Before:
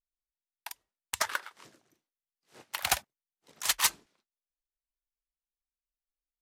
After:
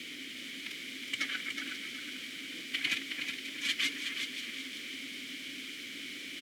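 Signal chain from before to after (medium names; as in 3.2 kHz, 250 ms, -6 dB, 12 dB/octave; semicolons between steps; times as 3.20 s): formant-preserving pitch shift +5.5 st; in parallel at +2.5 dB: peak limiter -19.5 dBFS, peak gain reduction 9 dB; on the sum: word length cut 6-bit, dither triangular; bass shelf 190 Hz -11 dB; echo whose repeats swap between lows and highs 269 ms, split 2.3 kHz, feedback 62%, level -11 dB; waveshaping leveller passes 3; vowel filter i; feedback delay 368 ms, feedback 37%, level -6.5 dB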